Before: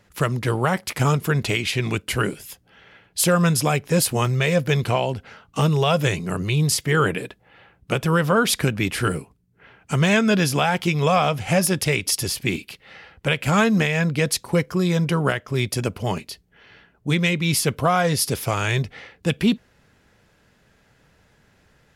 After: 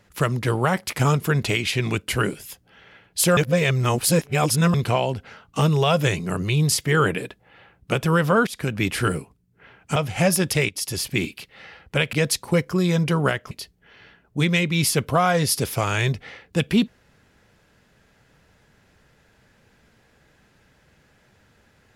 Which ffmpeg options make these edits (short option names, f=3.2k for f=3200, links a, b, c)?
-filter_complex "[0:a]asplit=8[a][b][c][d][e][f][g][h];[a]atrim=end=3.372[i];[b]atrim=start=3.368:end=4.742,asetpts=PTS-STARTPTS,areverse[j];[c]atrim=start=4.738:end=8.47,asetpts=PTS-STARTPTS,afade=t=out:st=3.728:d=0.004:c=hsin:silence=0.0749894[k];[d]atrim=start=8.47:end=9.962,asetpts=PTS-STARTPTS,afade=t=in:d=0.35:silence=0.0749894[l];[e]atrim=start=11.268:end=12,asetpts=PTS-STARTPTS,afade=t=out:st=0.728:d=0.004:c=hsin:silence=0.237137[m];[f]atrim=start=12:end=13.442,asetpts=PTS-STARTPTS,afade=t=in:d=0.37:silence=0.237137[n];[g]atrim=start=14.138:end=15.522[o];[h]atrim=start=16.208[p];[i][j]acrossfade=d=0.004:c1=hsin:c2=hsin[q];[k][l]concat=n=2:v=0:a=1[r];[q][r]acrossfade=d=0.004:c1=hsin:c2=hsin[s];[m][n]concat=n=2:v=0:a=1[t];[s][t]acrossfade=d=0.004:c1=hsin:c2=hsin[u];[u][o]acrossfade=d=0.004:c1=hsin:c2=hsin[v];[v][p]acrossfade=d=0.004:c1=hsin:c2=hsin"